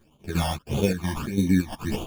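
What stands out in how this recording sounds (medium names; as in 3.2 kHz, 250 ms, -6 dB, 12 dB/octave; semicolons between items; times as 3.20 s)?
aliases and images of a low sample rate 2 kHz, jitter 0%; phasing stages 12, 1.6 Hz, lowest notch 420–1700 Hz; chopped level 2.9 Hz, depth 60%, duty 65%; a shimmering, thickened sound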